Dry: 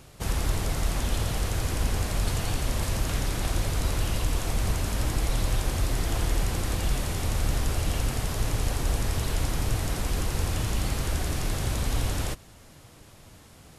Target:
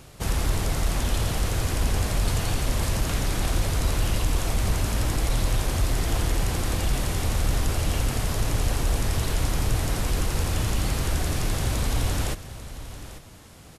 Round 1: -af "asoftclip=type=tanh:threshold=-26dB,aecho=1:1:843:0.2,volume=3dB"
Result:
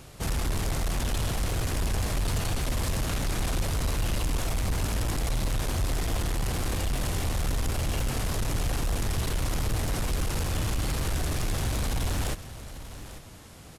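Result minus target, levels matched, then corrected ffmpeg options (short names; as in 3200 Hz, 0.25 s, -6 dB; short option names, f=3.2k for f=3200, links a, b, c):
soft clip: distortion +15 dB
-af "asoftclip=type=tanh:threshold=-14.5dB,aecho=1:1:843:0.2,volume=3dB"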